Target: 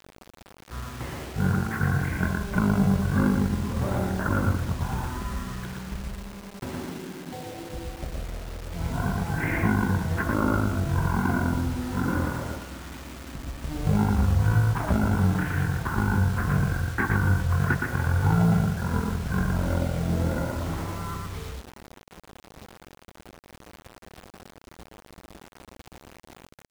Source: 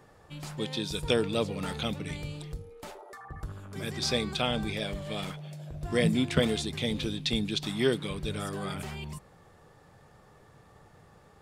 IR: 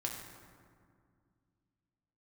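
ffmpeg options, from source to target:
-filter_complex "[0:a]lowpass=5.5k,asplit=2[a][b];[b]adelay=93.29,volume=-15dB,highshelf=f=4k:g=-2.1[c];[a][c]amix=inputs=2:normalize=0,asplit=2[d][e];[e]acrusher=samples=31:mix=1:aa=0.000001,volume=-5dB[f];[d][f]amix=inputs=2:normalize=0,asplit=2[g][h];[h]adelay=50,volume=-3dB[i];[g][i]amix=inputs=2:normalize=0,asetrate=18846,aresample=44100,acrossover=split=1800[j][k];[j]alimiter=limit=-18dB:level=0:latency=1:release=374[l];[k]acompressor=threshold=-54dB:ratio=6[m];[l][m]amix=inputs=2:normalize=0,highpass=58,acrusher=bits=7:mix=0:aa=0.000001,volume=6dB"

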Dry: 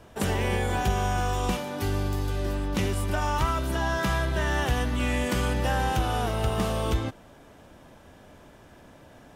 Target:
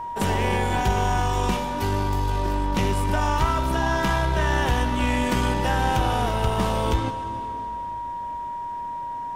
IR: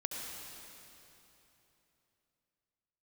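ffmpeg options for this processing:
-filter_complex "[0:a]aeval=exprs='val(0)+0.0251*sin(2*PI*950*n/s)':c=same,aeval=exprs='0.211*(cos(1*acos(clip(val(0)/0.211,-1,1)))-cos(1*PI/2))+0.0133*(cos(4*acos(clip(val(0)/0.211,-1,1)))-cos(4*PI/2))':c=same,asplit=2[a][b];[1:a]atrim=start_sample=2205,lowpass=8.5k[c];[b][c]afir=irnorm=-1:irlink=0,volume=-7dB[d];[a][d]amix=inputs=2:normalize=0"

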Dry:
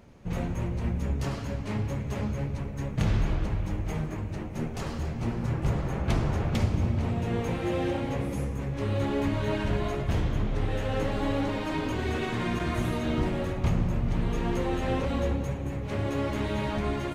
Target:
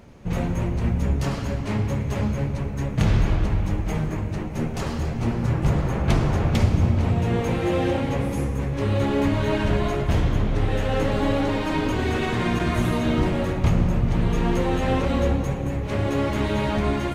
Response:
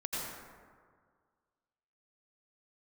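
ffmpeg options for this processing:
-filter_complex "[0:a]asplit=2[a][b];[1:a]atrim=start_sample=2205,asetrate=34398,aresample=44100[c];[b][c]afir=irnorm=-1:irlink=0,volume=-17dB[d];[a][d]amix=inputs=2:normalize=0,volume=5dB"

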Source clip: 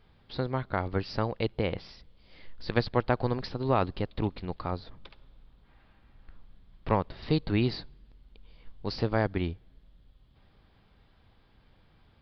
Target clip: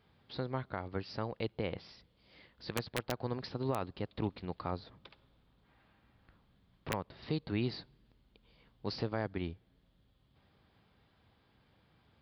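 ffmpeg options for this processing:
-af "highpass=84,aeval=exprs='(mod(3.98*val(0)+1,2)-1)/3.98':c=same,alimiter=limit=-19.5dB:level=0:latency=1:release=454,volume=-4dB"

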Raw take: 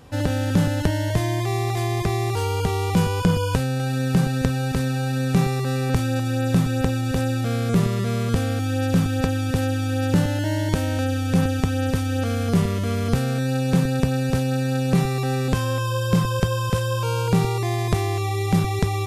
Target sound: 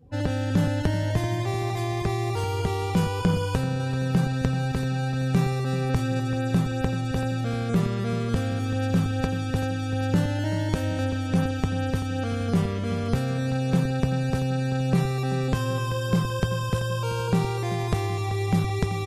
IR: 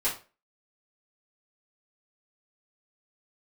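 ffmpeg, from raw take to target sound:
-filter_complex "[0:a]afftdn=nr=23:nf=-42,asplit=2[a][b];[b]adelay=384,lowpass=f=3.8k:p=1,volume=-13dB,asplit=2[c][d];[d]adelay=384,lowpass=f=3.8k:p=1,volume=0.49,asplit=2[e][f];[f]adelay=384,lowpass=f=3.8k:p=1,volume=0.49,asplit=2[g][h];[h]adelay=384,lowpass=f=3.8k:p=1,volume=0.49,asplit=2[i][j];[j]adelay=384,lowpass=f=3.8k:p=1,volume=0.49[k];[a][c][e][g][i][k]amix=inputs=6:normalize=0,volume=-3.5dB"

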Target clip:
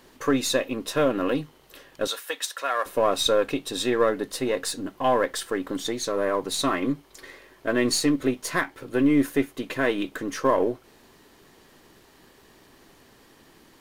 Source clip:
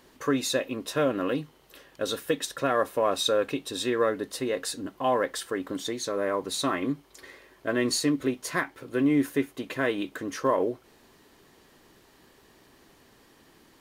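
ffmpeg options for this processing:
-filter_complex "[0:a]aeval=exprs='if(lt(val(0),0),0.708*val(0),val(0))':c=same,asettb=1/sr,asplit=3[a][b][c];[a]atrim=end=2.074[d];[b]atrim=start=2.07:end=2.86,asetpts=PTS-STARTPTS,afade=t=in:d=0.004:c=qsin,afade=t=out:st=0.786:d=0.004:c=qsin,highpass=850[e];[c]atrim=start=2.856[f];[d][e]acrossfade=d=0.004:c1=hsin:c2=qsin[g];[g][f]acrossfade=d=0.004:c1=qsin:c2=hsin,volume=4.5dB"

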